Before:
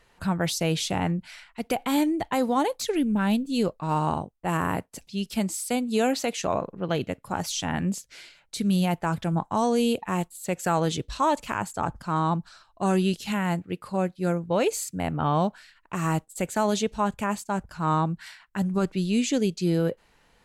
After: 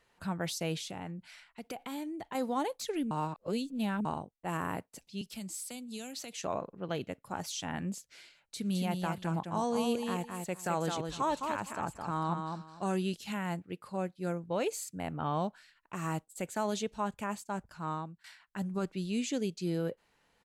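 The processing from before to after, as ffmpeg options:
ffmpeg -i in.wav -filter_complex "[0:a]asettb=1/sr,asplit=3[link_01][link_02][link_03];[link_01]atrim=end=0.774[link_04];[link_02]atrim=start=0.77:end=2.35,asetpts=PTS-STARTPTS,afade=type=in:duration=0.004:curve=qsin,afade=type=out:start_time=1.576:duration=0.004:curve=qsin,acompressor=threshold=-30dB:ratio=2.5:attack=3.2:release=140:knee=1:detection=peak[link_05];[link_03]atrim=start=2.346[link_06];[link_04][link_05]acrossfade=duration=0.004:curve1=hsin:curve2=qsin[link_07];[link_07][link_06]acrossfade=duration=0.004:curve1=qsin:curve2=hsin,asettb=1/sr,asplit=3[link_08][link_09][link_10];[link_08]atrim=end=5.214[link_11];[link_09]atrim=start=5.21:end=6.42,asetpts=PTS-STARTPTS,afade=type=in:duration=0.004:curve=qsin,afade=type=out:start_time=1.206:duration=0.004:curve=qsin,acrossover=split=170|3000[link_12][link_13][link_14];[link_13]acompressor=threshold=-37dB:ratio=5:attack=3.2:release=140:knee=2.83:detection=peak[link_15];[link_12][link_15][link_14]amix=inputs=3:normalize=0[link_16];[link_10]atrim=start=6.416[link_17];[link_11][link_16]acrossfade=duration=0.004:curve1=hsin:curve2=qsin[link_18];[link_18][link_17]acrossfade=duration=0.004:curve1=qsin:curve2=hsin,asplit=3[link_19][link_20][link_21];[link_19]afade=type=out:start_time=8.59:duration=0.02[link_22];[link_20]aecho=1:1:212|457:0.562|0.106,afade=type=in:start_time=8.59:duration=0.02,afade=type=out:start_time=12.95:duration=0.02[link_23];[link_21]afade=type=in:start_time=12.95:duration=0.02[link_24];[link_22][link_23][link_24]amix=inputs=3:normalize=0,asplit=4[link_25][link_26][link_27][link_28];[link_25]atrim=end=3.112[link_29];[link_26]atrim=start=3.108:end=4.052,asetpts=PTS-STARTPTS,areverse[link_30];[link_27]atrim=start=4.048:end=18.24,asetpts=PTS-STARTPTS,afade=type=out:start_time=13.662:duration=0.53:silence=0.11885[link_31];[link_28]atrim=start=18.24,asetpts=PTS-STARTPTS,afade=type=in:duration=0.004:curve=hsin:silence=0.11885[link_32];[link_29][link_30]acrossfade=duration=0.004:curve1=hsin:curve2=hsin[link_33];[link_31][link_32]concat=n=2:v=0:a=1[link_34];[link_33][link_34]acrossfade=duration=0.004:curve1=hsin:curve2=hsin,lowshelf=frequency=70:gain=-10,volume=-8.5dB" out.wav

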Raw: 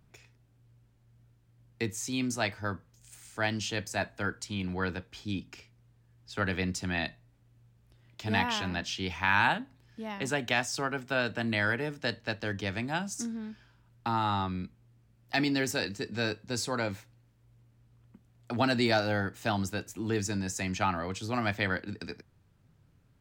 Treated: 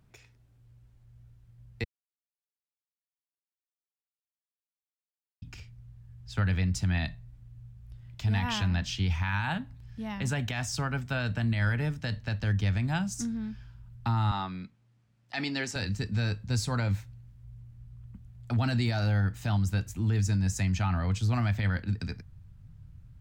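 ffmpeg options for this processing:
ffmpeg -i in.wav -filter_complex "[0:a]asettb=1/sr,asplit=3[link_01][link_02][link_03];[link_01]atrim=end=14.314[link_04];[link_02]atrim=start=14.31:end=15.76,asetpts=PTS-STARTPTS,afade=type=in:duration=0.004:curve=qsin,afade=type=out:start_time=1.446:duration=0.004:curve=qsin,highpass=320,lowpass=7300[link_05];[link_03]atrim=start=15.756[link_06];[link_04][link_05]acrossfade=duration=0.004:curve1=hsin:curve2=qsin[link_07];[link_07][link_06]acrossfade=duration=0.004:curve1=qsin:curve2=hsin,asplit=3[link_08][link_09][link_10];[link_08]atrim=end=1.84,asetpts=PTS-STARTPTS,afade=type=out:start_time=1.836:duration=0.004:curve=hsin[link_11];[link_09]atrim=start=1.84:end=5.42,asetpts=PTS-STARTPTS,volume=0[link_12];[link_10]atrim=start=5.42,asetpts=PTS-STARTPTS,afade=type=in:duration=0.004:curve=hsin[link_13];[link_11][link_12][link_13]concat=n=3:v=0:a=1,asubboost=boost=11:cutoff=110,alimiter=limit=-20dB:level=0:latency=1:release=53" out.wav

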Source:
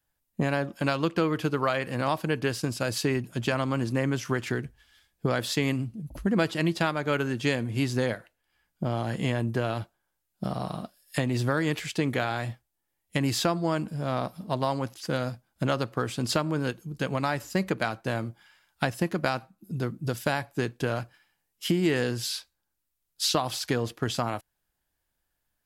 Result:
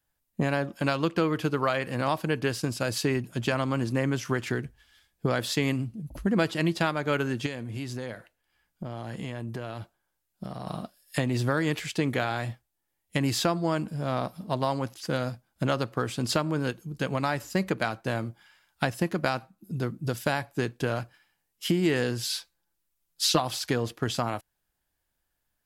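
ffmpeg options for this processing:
ffmpeg -i in.wav -filter_complex "[0:a]asettb=1/sr,asplit=3[link_01][link_02][link_03];[link_01]atrim=end=7.464[link_04];[link_02]atrim=start=7.46:end=10.67,asetpts=PTS-STARTPTS,afade=type=in:duration=0.004:curve=qsin,afade=type=out:start_time=3.206:duration=0.004:curve=qsin,acompressor=threshold=-33dB:ratio=3:attack=3.2:release=140:knee=1:detection=peak[link_05];[link_03]atrim=start=10.666[link_06];[link_04][link_05]acrossfade=duration=0.004:curve1=hsin:curve2=qsin[link_07];[link_07][link_06]acrossfade=duration=0.004:curve1=qsin:curve2=hsin,asettb=1/sr,asplit=3[link_08][link_09][link_10];[link_08]atrim=end=22.294[link_11];[link_09]atrim=start=22.29:end=23.4,asetpts=PTS-STARTPTS,afade=type=in:duration=0.004:curve=qsin,afade=type=out:start_time=1.106:duration=0.004:curve=qsin,aecho=1:1:5.9:0.65,atrim=end_sample=48951[link_12];[link_10]atrim=start=23.396[link_13];[link_11][link_12]acrossfade=duration=0.004:curve1=hsin:curve2=qsin[link_14];[link_14][link_13]acrossfade=duration=0.004:curve1=qsin:curve2=hsin" out.wav

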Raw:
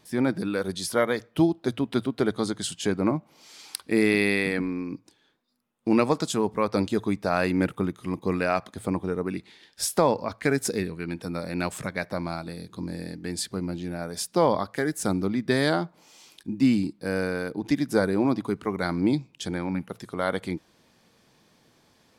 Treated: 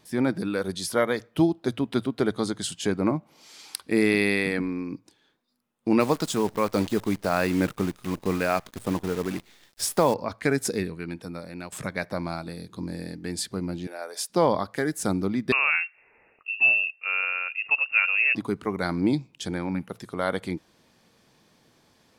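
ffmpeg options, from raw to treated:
ffmpeg -i in.wav -filter_complex "[0:a]asettb=1/sr,asplit=3[link_01][link_02][link_03];[link_01]atrim=end=6.004[link_04];[link_02]atrim=start=6:end=10.14,asetpts=PTS-STARTPTS,afade=type=in:duration=0.004:curve=qsin,afade=type=out:start_time=4.136:duration=0.004:curve=qsin,acrusher=bits=7:dc=4:mix=0:aa=0.000001[link_05];[link_03]atrim=start=10.136[link_06];[link_04][link_05]acrossfade=duration=0.004:curve1=hsin:curve2=qsin[link_07];[link_07][link_06]acrossfade=duration=0.004:curve1=qsin:curve2=hsin,asettb=1/sr,asplit=3[link_08][link_09][link_10];[link_08]atrim=end=13.874[link_11];[link_09]atrim=start=13.87:end=14.3,asetpts=PTS-STARTPTS,afade=type=in:duration=0.004:curve=qsin,afade=type=out:start_time=0.426:duration=0.004:curve=qsin,highpass=frequency=430:width=0.5412,highpass=frequency=430:width=1.3066[link_12];[link_10]atrim=start=14.296[link_13];[link_11][link_12]acrossfade=duration=0.004:curve1=hsin:curve2=qsin[link_14];[link_14][link_13]acrossfade=duration=0.004:curve1=qsin:curve2=hsin,asettb=1/sr,asplit=3[link_15][link_16][link_17];[link_15]atrim=end=15.524[link_18];[link_16]atrim=start=15.52:end=18.35,asetpts=PTS-STARTPTS,afade=type=in:duration=0.004:curve=qsin,afade=type=out:start_time=2.826:duration=0.004:curve=qsin,lowpass=frequency=2500:width_type=q:width=0.5098,lowpass=frequency=2500:width_type=q:width=0.6013,lowpass=frequency=2500:width_type=q:width=0.9,lowpass=frequency=2500:width_type=q:width=2.563,afreqshift=-2900[link_19];[link_17]atrim=start=18.346[link_20];[link_18][link_19]acrossfade=duration=0.004:curve1=hsin:curve2=qsin[link_21];[link_21][link_20]acrossfade=duration=0.004:curve1=qsin:curve2=hsin,asplit=2[link_22][link_23];[link_22]atrim=end=11.72,asetpts=PTS-STARTPTS,afade=type=out:start_time=10.84:duration=0.88:silence=0.237137[link_24];[link_23]atrim=start=11.72,asetpts=PTS-STARTPTS,afade=type=in:duration=0.004:curve=hsin:silence=0.237137[link_25];[link_24][link_25]concat=n=2:v=0:a=1" out.wav

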